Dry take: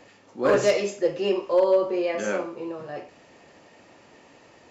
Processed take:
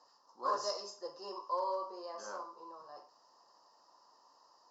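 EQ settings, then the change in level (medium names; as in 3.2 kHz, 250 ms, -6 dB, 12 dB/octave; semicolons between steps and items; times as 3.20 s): two resonant band-passes 2.3 kHz, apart 2.3 oct; band-stop 3.4 kHz, Q 9.3; 0.0 dB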